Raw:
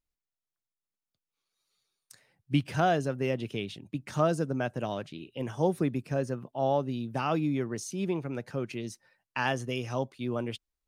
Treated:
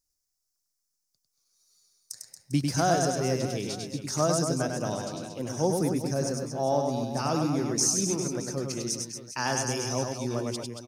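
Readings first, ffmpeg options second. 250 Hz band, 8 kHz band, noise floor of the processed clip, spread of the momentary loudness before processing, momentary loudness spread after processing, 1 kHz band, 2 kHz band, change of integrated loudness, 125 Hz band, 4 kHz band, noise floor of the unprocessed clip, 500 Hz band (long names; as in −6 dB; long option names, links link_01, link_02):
+2.0 dB, +18.0 dB, −80 dBFS, 10 LU, 10 LU, +1.5 dB, −0.5 dB, +3.0 dB, +2.0 dB, +7.0 dB, below −85 dBFS, +2.0 dB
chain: -af "highshelf=frequency=4100:width_type=q:width=3:gain=10.5,aecho=1:1:100|230|399|618.7|904.3:0.631|0.398|0.251|0.158|0.1"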